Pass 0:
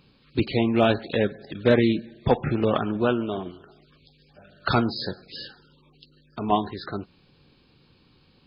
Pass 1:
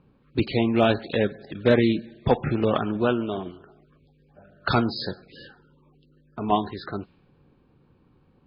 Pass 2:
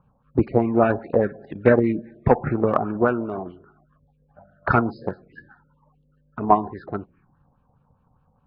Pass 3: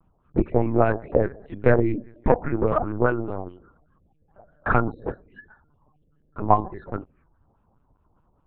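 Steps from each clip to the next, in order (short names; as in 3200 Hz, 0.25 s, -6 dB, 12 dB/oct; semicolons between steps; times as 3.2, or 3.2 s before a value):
low-pass opened by the level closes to 1200 Hz, open at -21.5 dBFS
LFO low-pass sine 4.9 Hz 730–2200 Hz; envelope phaser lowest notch 330 Hz, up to 3300 Hz, full sweep at -24.5 dBFS; transient shaper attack +6 dB, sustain +1 dB; gain -1 dB
LPC vocoder at 8 kHz pitch kept; gain -1 dB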